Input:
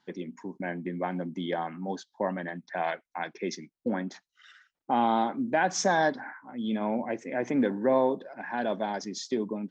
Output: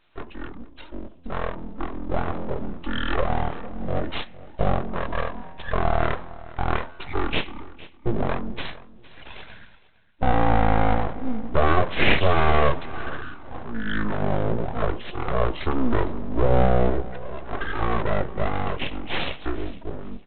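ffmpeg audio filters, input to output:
-filter_complex "[0:a]aemphasis=mode=production:type=bsi,bandreject=f=178.2:t=h:w=4,bandreject=f=356.4:t=h:w=4,bandreject=f=534.6:t=h:w=4,bandreject=f=712.8:t=h:w=4,bandreject=f=891:t=h:w=4,bandreject=f=1069.2:t=h:w=4,bandreject=f=1247.4:t=h:w=4,bandreject=f=1425.6:t=h:w=4,bandreject=f=1603.8:t=h:w=4,bandreject=f=1782:t=h:w=4,asplit=2[s0][s1];[s1]acompressor=threshold=0.02:ratio=6,volume=1.19[s2];[s0][s2]amix=inputs=2:normalize=0,asetrate=21124,aresample=44100,dynaudnorm=f=520:g=7:m=1.88,aresample=8000,aeval=exprs='abs(val(0))':c=same,aresample=44100,aecho=1:1:459|918:0.112|0.0269,volume=1.19"

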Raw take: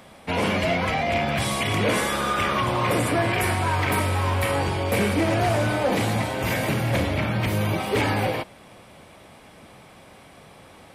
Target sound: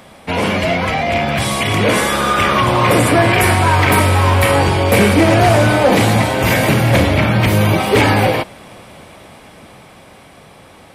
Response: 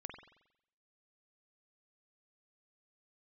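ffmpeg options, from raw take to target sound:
-af "dynaudnorm=f=500:g=9:m=1.68,volume=2.11"

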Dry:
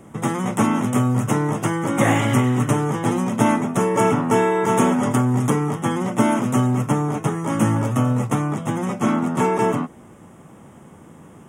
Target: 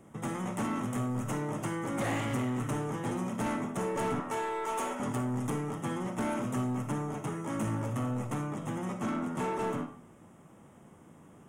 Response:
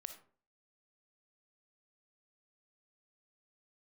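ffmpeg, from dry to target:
-filter_complex "[0:a]asettb=1/sr,asplit=3[s0][s1][s2];[s0]atrim=end=4.204[s3];[s1]atrim=start=4.2:end=5,asetpts=PTS-STARTPTS,afade=t=in:d=0.004:c=qsin,afade=t=out:st=0.796:d=0.004:c=qsin,highpass=490[s4];[s2]atrim=start=4.996[s5];[s3][s4]acrossfade=d=0.004:c1=hsin:c2=qsin[s6];[s6][s5]acrossfade=d=0.004:c1=qsin:c2=hsin,asoftclip=type=tanh:threshold=0.158[s7];[1:a]atrim=start_sample=2205[s8];[s7][s8]afir=irnorm=-1:irlink=0,volume=0.501"

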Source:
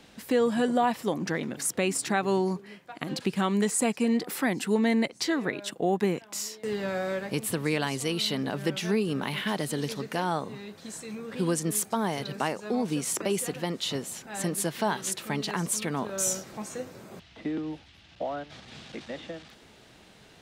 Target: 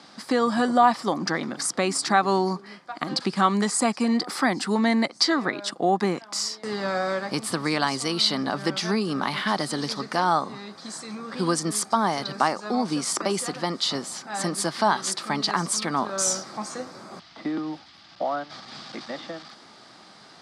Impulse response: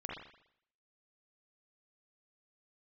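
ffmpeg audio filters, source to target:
-af "highpass=190,equalizer=f=450:t=q:w=4:g=-7,equalizer=f=790:t=q:w=4:g=4,equalizer=f=1200:t=q:w=4:g=9,equalizer=f=2700:t=q:w=4:g=-7,equalizer=f=4800:t=q:w=4:g=10,equalizer=f=7000:t=q:w=4:g=-3,lowpass=f=9400:w=0.5412,lowpass=f=9400:w=1.3066,volume=1.68"

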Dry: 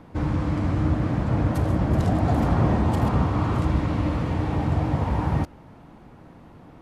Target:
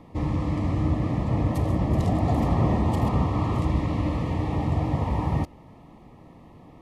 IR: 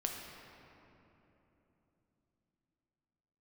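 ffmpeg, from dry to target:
-af "asuperstop=centerf=1500:order=8:qfactor=3.8,volume=0.841"

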